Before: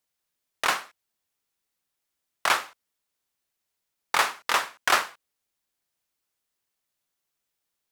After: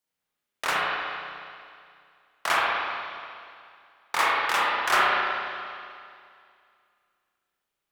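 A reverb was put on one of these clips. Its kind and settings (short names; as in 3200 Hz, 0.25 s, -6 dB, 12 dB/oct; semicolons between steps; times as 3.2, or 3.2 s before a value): spring tank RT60 2.3 s, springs 33/60 ms, chirp 50 ms, DRR -7 dB; gain -5 dB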